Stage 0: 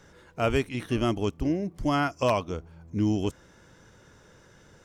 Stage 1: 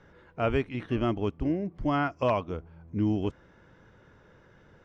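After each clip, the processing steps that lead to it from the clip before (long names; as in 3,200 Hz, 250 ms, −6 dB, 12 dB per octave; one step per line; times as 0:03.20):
low-pass filter 2,600 Hz 12 dB per octave
level −1.5 dB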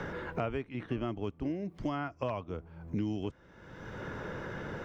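multiband upward and downward compressor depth 100%
level −7.5 dB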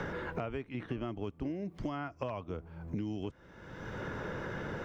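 downward compressor 2.5 to 1, threshold −37 dBFS, peak gain reduction 6.5 dB
level +2 dB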